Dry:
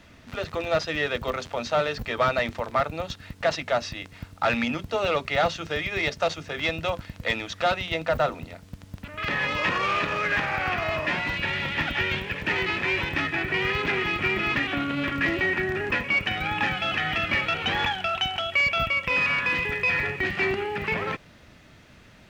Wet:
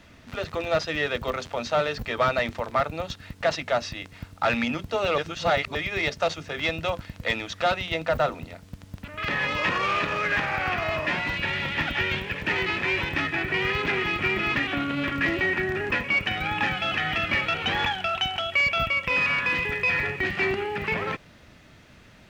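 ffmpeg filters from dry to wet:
-filter_complex "[0:a]asplit=3[a][b][c];[a]atrim=end=5.182[d];[b]atrim=start=5.178:end=5.752,asetpts=PTS-STARTPTS,areverse[e];[c]atrim=start=5.748[f];[d][e]acrossfade=d=0.004:c1=hsin:c2=hsin[g];[g][f]acrossfade=d=0.004:c1=hsin:c2=hsin"

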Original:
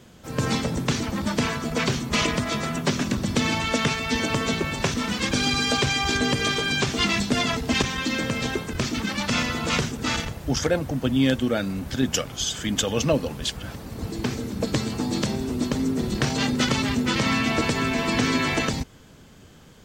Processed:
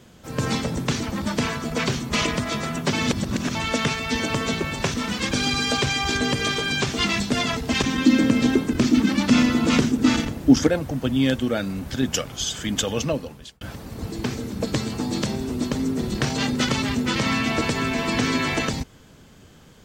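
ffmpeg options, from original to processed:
-filter_complex "[0:a]asettb=1/sr,asplit=3[a][b][c];[a]atrim=end=7.864[d];[b]atrim=start=7.86:end=10.68,asetpts=PTS-STARTPTS,afade=t=in:d=0.004:c=qsin,afade=t=out:st=2.816:d=0.004:c=qsin,equalizer=f=270:t=o:w=0.77:g=15[e];[c]atrim=start=10.676[f];[d][e]acrossfade=d=0.004:c1=hsin:c2=qsin[g];[g][f]acrossfade=d=0.004:c1=qsin:c2=hsin,asplit=4[h][i][j][k];[h]atrim=end=2.932[l];[i]atrim=start=2.928:end=3.552,asetpts=PTS-STARTPTS,areverse[m];[j]atrim=start=3.548:end=13.61,asetpts=PTS-STARTPTS,afade=t=out:st=9.342:d=0.72[n];[k]atrim=start=13.61,asetpts=PTS-STARTPTS,afade=t=in:d=0.004:c=hsin[o];[l][m]acrossfade=d=0.004:c1=hsin:c2=hsin[p];[n][o]concat=n=2:v=0:a=1[q];[p][q]acrossfade=d=0.004:c1=hsin:c2=hsin"

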